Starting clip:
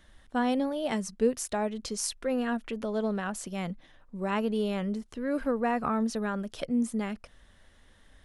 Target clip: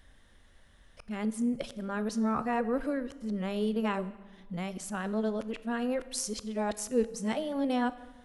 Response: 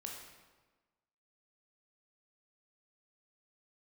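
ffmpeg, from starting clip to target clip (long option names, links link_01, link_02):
-filter_complex "[0:a]areverse,asplit=2[link_01][link_02];[link_02]bass=frequency=250:gain=5,treble=frequency=4000:gain=1[link_03];[1:a]atrim=start_sample=2205[link_04];[link_03][link_04]afir=irnorm=-1:irlink=0,volume=-7.5dB[link_05];[link_01][link_05]amix=inputs=2:normalize=0,volume=-4dB"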